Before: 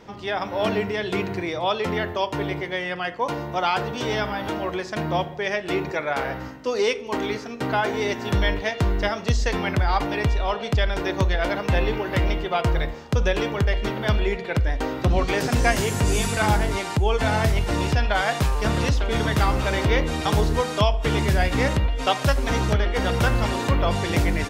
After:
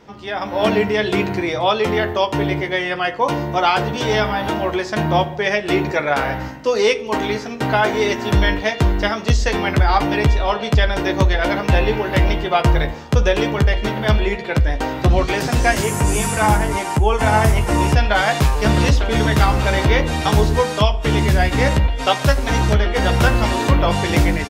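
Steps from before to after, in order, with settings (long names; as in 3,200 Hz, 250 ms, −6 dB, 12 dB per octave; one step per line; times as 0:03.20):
0:15.83–0:17.95: graphic EQ with 15 bands 1,000 Hz +4 dB, 4,000 Hz −7 dB, 10,000 Hz +6 dB
automatic gain control gain up to 8 dB
double-tracking delay 14 ms −7.5 dB
level −1 dB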